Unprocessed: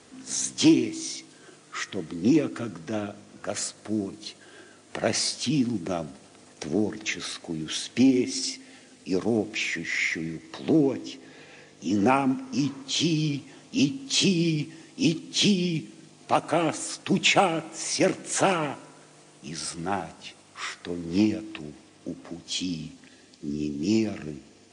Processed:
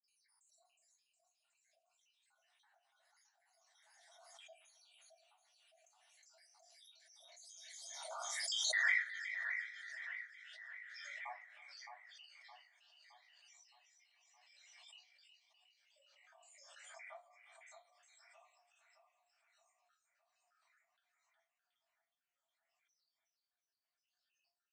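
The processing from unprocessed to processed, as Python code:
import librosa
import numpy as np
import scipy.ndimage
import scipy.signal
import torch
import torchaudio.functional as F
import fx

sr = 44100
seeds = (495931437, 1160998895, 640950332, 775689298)

y = fx.spec_dropout(x, sr, seeds[0], share_pct=84)
y = fx.doppler_pass(y, sr, speed_mps=39, closest_m=3.3, pass_at_s=8.75)
y = fx.env_lowpass_down(y, sr, base_hz=2000.0, full_db=-44.5)
y = scipy.signal.sosfilt(scipy.signal.butter(16, 650.0, 'highpass', fs=sr, output='sos'), y)
y = fx.echo_split(y, sr, split_hz=2300.0, low_ms=616, high_ms=364, feedback_pct=52, wet_db=-7.0)
y = fx.room_shoebox(y, sr, seeds[1], volume_m3=120.0, walls='furnished', distance_m=2.5)
y = fx.pre_swell(y, sr, db_per_s=20.0)
y = y * librosa.db_to_amplitude(-1.5)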